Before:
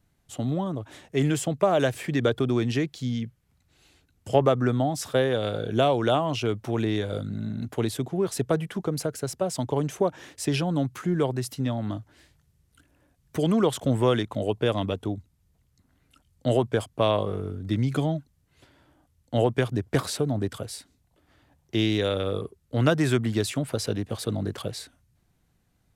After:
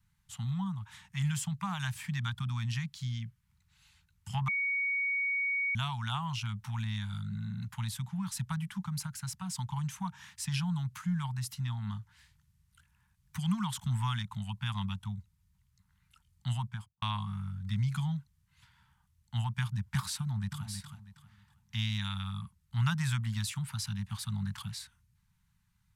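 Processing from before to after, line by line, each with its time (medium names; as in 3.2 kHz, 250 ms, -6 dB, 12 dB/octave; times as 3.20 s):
4.48–5.75 s: bleep 2.24 kHz -21 dBFS
16.56–17.02 s: studio fade out
20.19–20.67 s: echo throw 320 ms, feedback 30%, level -7.5 dB
whole clip: Chebyshev band-stop 200–890 Hz, order 4; dynamic bell 1.9 kHz, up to -4 dB, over -44 dBFS, Q 0.74; trim -3.5 dB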